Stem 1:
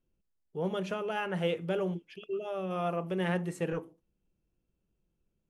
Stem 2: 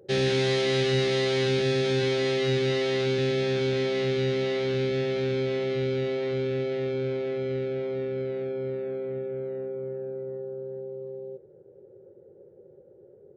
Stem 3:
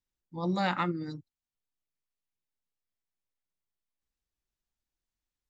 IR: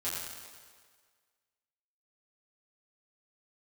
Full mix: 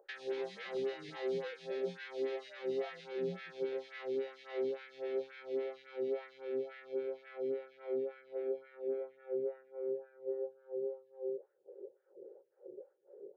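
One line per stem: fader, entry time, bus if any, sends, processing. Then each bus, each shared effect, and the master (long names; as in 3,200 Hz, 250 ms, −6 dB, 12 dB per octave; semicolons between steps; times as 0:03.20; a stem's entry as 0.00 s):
−15.0 dB, 0.00 s, no send, every bin expanded away from the loudest bin 2.5 to 1
−2.5 dB, 0.00 s, no send, high-shelf EQ 4,100 Hz −9 dB; downward compressor, threshold −35 dBFS, peak gain reduction 13 dB; auto-filter high-pass sine 2.1 Hz 320–1,700 Hz
−17.5 dB, 0.00 s, no send, compressor whose output falls as the input rises −37 dBFS, ratio −1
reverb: not used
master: phaser with staggered stages 3.6 Hz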